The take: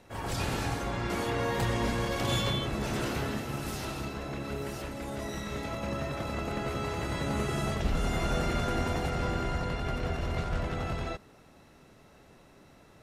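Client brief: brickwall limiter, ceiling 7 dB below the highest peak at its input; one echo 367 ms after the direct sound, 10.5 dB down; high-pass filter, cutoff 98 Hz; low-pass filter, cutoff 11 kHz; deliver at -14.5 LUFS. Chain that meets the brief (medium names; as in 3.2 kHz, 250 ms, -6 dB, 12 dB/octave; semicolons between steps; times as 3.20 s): high-pass 98 Hz; low-pass 11 kHz; peak limiter -25 dBFS; delay 367 ms -10.5 dB; trim +20 dB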